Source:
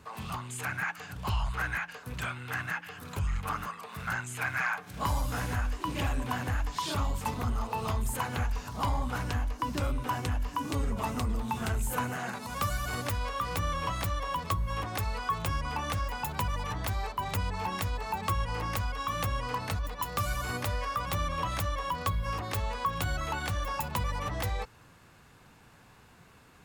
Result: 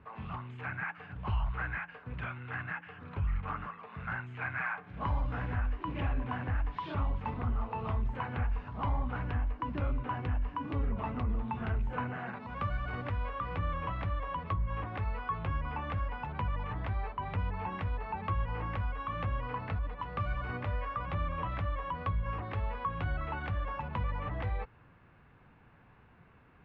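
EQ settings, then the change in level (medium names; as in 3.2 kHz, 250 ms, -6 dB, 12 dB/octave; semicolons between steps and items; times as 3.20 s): low-pass 2.6 kHz 24 dB/octave; bass shelf 200 Hz +4 dB; -4.5 dB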